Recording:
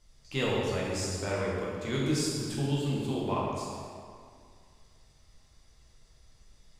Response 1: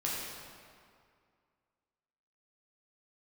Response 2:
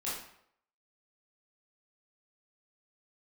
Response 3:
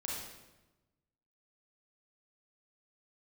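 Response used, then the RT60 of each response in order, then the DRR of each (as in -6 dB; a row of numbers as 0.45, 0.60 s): 1; 2.2, 0.70, 1.1 s; -6.0, -9.0, -4.5 dB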